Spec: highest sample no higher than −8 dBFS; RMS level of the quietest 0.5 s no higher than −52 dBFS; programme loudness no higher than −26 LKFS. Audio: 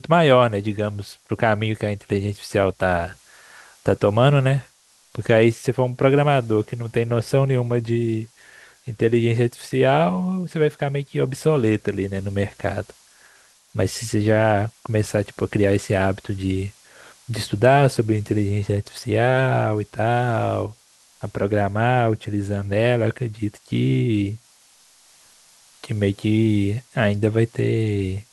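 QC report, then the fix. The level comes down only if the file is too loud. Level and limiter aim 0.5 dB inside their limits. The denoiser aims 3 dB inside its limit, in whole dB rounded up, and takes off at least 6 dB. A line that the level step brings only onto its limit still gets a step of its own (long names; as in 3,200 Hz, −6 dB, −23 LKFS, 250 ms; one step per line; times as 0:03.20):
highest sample −2.0 dBFS: out of spec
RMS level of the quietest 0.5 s −56 dBFS: in spec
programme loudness −21.0 LKFS: out of spec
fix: level −5.5 dB
brickwall limiter −8.5 dBFS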